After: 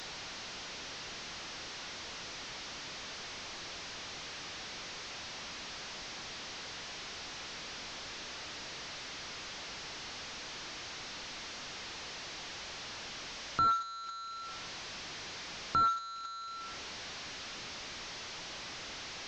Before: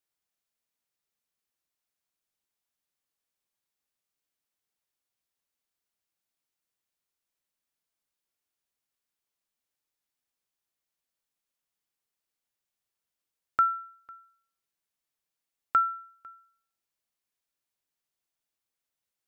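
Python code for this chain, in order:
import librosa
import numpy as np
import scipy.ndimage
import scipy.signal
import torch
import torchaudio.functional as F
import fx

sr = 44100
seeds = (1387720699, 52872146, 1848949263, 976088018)

y = fx.delta_mod(x, sr, bps=32000, step_db=-41.0)
y = y * librosa.db_to_amplitude(4.0)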